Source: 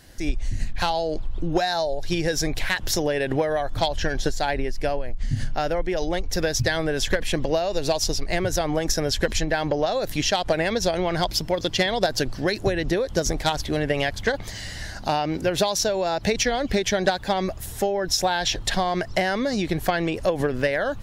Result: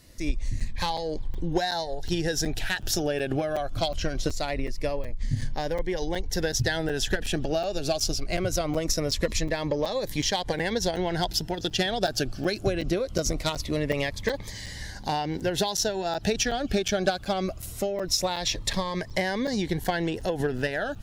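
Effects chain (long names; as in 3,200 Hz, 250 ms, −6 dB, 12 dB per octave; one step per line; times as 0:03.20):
harmonic generator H 7 −36 dB, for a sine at −11.5 dBFS
regular buffer underruns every 0.37 s, samples 256, zero, from 0:00.60
phaser whose notches keep moving one way falling 0.22 Hz
level −2 dB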